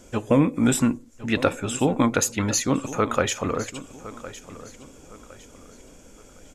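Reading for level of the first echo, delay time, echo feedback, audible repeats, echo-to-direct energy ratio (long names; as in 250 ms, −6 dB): −16.0 dB, 1,060 ms, 34%, 3, −15.5 dB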